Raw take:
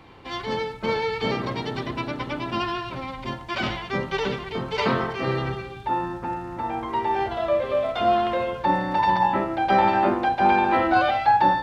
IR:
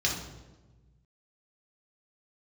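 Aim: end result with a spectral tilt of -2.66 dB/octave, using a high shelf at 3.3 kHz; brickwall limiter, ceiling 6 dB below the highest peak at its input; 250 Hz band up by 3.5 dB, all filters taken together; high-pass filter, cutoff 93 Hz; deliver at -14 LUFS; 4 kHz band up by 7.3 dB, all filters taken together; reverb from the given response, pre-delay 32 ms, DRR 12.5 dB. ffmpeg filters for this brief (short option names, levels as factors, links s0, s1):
-filter_complex "[0:a]highpass=93,equalizer=f=250:t=o:g=5,highshelf=f=3300:g=4.5,equalizer=f=4000:t=o:g=6.5,alimiter=limit=0.237:level=0:latency=1,asplit=2[s0][s1];[1:a]atrim=start_sample=2205,adelay=32[s2];[s1][s2]afir=irnorm=-1:irlink=0,volume=0.0841[s3];[s0][s3]amix=inputs=2:normalize=0,volume=2.99"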